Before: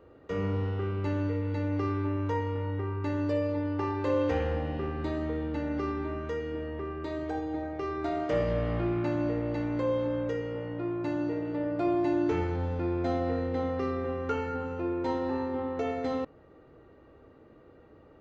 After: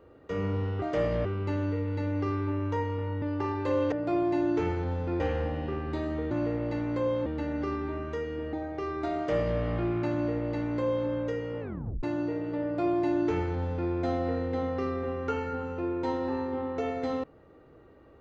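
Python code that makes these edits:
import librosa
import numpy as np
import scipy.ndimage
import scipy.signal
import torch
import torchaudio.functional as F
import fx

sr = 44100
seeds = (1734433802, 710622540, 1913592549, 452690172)

y = fx.edit(x, sr, fx.cut(start_s=2.79, length_s=0.82),
    fx.cut(start_s=6.69, length_s=0.85),
    fx.duplicate(start_s=8.18, length_s=0.43, to_s=0.82),
    fx.duplicate(start_s=9.14, length_s=0.95, to_s=5.42),
    fx.tape_stop(start_s=10.61, length_s=0.43),
    fx.duplicate(start_s=11.64, length_s=1.28, to_s=4.31), tone=tone)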